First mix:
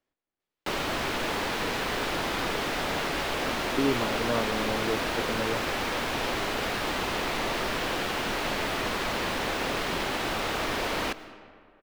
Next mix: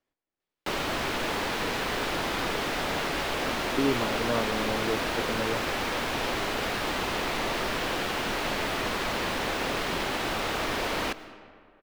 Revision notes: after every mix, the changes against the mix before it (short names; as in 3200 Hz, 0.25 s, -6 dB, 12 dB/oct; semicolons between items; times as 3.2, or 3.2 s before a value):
none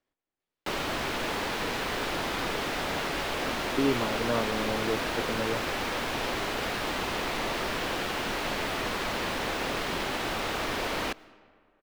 background: send -8.5 dB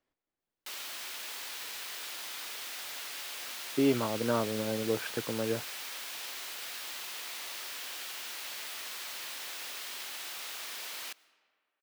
background: add differentiator